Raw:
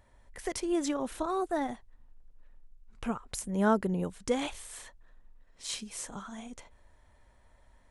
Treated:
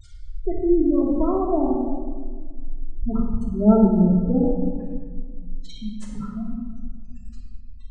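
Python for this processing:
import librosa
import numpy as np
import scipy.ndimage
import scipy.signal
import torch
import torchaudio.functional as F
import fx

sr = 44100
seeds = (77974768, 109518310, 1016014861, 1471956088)

y = fx.tilt_eq(x, sr, slope=-3.0)
y = fx.dmg_noise_band(y, sr, seeds[0], low_hz=1000.0, high_hz=9600.0, level_db=-50.0)
y = fx.spec_gate(y, sr, threshold_db=-15, keep='strong')
y = fx.room_shoebox(y, sr, seeds[1], volume_m3=1800.0, walls='mixed', distance_m=3.0)
y = y * 10.0 ** (1.0 / 20.0)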